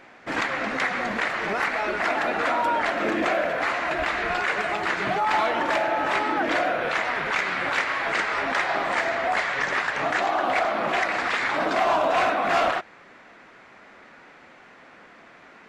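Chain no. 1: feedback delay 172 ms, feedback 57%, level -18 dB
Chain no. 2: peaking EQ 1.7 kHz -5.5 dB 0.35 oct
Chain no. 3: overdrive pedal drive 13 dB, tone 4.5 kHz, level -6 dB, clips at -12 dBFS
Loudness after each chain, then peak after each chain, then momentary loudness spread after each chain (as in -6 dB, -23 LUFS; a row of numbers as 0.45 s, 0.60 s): -24.0 LUFS, -25.0 LUFS, -20.0 LUFS; -12.5 dBFS, -13.0 dBFS, -12.5 dBFS; 3 LU, 4 LU, 2 LU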